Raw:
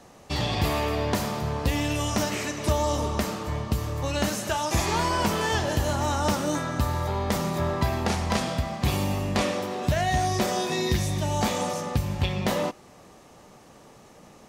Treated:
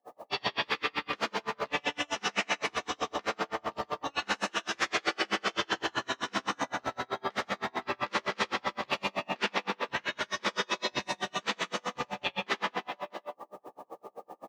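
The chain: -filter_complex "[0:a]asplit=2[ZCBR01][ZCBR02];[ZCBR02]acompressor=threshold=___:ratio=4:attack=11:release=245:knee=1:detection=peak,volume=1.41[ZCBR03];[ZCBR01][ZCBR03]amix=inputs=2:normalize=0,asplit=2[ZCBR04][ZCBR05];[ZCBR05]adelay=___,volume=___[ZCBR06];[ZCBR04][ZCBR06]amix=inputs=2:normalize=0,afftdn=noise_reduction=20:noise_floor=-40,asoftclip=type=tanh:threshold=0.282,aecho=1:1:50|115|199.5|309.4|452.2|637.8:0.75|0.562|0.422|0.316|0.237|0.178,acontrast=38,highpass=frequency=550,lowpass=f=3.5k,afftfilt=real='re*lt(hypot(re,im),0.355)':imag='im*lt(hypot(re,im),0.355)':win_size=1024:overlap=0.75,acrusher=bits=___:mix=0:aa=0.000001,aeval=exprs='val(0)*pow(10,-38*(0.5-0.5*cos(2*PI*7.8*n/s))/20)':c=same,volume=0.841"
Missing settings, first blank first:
0.00794, 15, 0.708, 9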